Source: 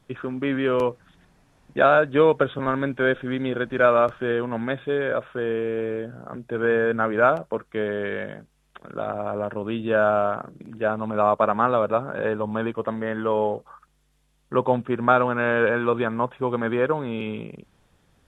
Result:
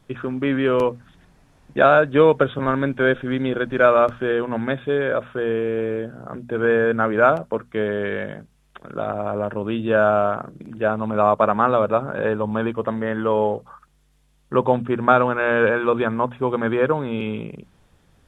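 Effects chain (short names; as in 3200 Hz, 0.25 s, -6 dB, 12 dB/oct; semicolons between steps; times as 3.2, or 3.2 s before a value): low shelf 180 Hz +4 dB; notches 60/120/180/240 Hz; gain +2.5 dB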